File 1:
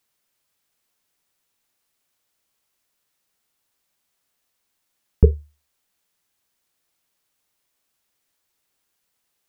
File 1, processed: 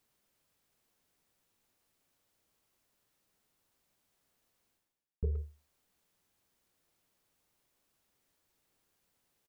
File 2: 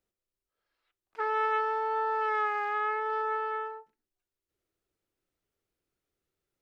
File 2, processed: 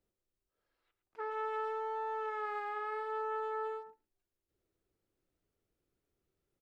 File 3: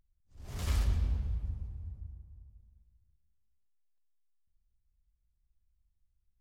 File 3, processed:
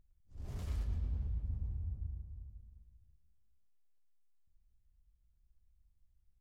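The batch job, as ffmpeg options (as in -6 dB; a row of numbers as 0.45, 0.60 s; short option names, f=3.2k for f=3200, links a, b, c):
-filter_complex "[0:a]tiltshelf=f=730:g=4.5,areverse,acompressor=threshold=-35dB:ratio=5,areverse,asplit=2[a][b];[b]adelay=110,highpass=300,lowpass=3.4k,asoftclip=type=hard:threshold=-34.5dB,volume=-10dB[c];[a][c]amix=inputs=2:normalize=0"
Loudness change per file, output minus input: -18.5, -8.5, -6.0 LU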